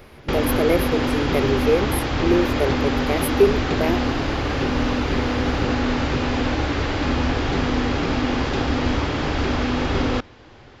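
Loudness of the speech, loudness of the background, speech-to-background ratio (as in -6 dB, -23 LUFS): -23.0 LUFS, -22.5 LUFS, -0.5 dB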